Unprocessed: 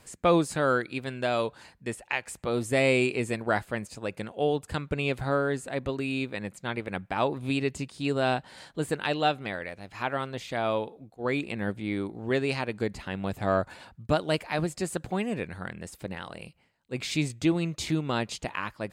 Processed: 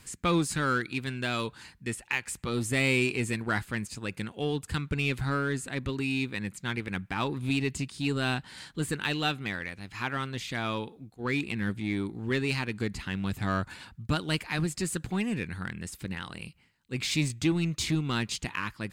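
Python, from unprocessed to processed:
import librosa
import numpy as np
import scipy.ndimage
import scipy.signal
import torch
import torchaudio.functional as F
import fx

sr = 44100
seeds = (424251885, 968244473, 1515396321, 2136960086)

p1 = fx.peak_eq(x, sr, hz=610.0, db=-14.5, octaves=1.1)
p2 = np.clip(p1, -10.0 ** (-32.5 / 20.0), 10.0 ** (-32.5 / 20.0))
y = p1 + (p2 * librosa.db_to_amplitude(-4.5))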